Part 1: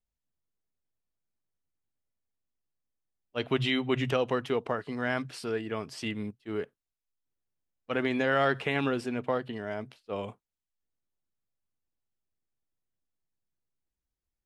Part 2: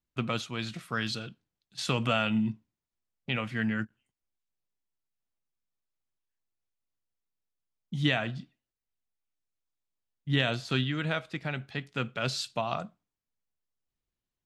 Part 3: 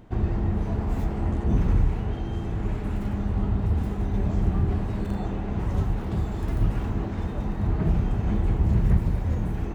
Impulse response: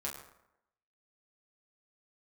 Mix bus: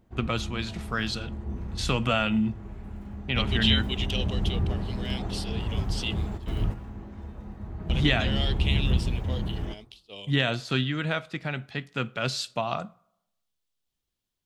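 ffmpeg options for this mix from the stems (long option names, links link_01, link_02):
-filter_complex "[0:a]highshelf=frequency=2200:width_type=q:width=3:gain=14,volume=-10.5dB,asplit=2[link_01][link_02];[1:a]volume=2dB,asplit=2[link_03][link_04];[link_04]volume=-22dB[link_05];[2:a]volume=-5dB,asplit=2[link_06][link_07];[link_07]volume=-13dB[link_08];[link_02]apad=whole_len=429774[link_09];[link_06][link_09]sidechaingate=range=-14dB:threshold=-54dB:ratio=16:detection=peak[link_10];[3:a]atrim=start_sample=2205[link_11];[link_05][link_08]amix=inputs=2:normalize=0[link_12];[link_12][link_11]afir=irnorm=-1:irlink=0[link_13];[link_01][link_03][link_10][link_13]amix=inputs=4:normalize=0"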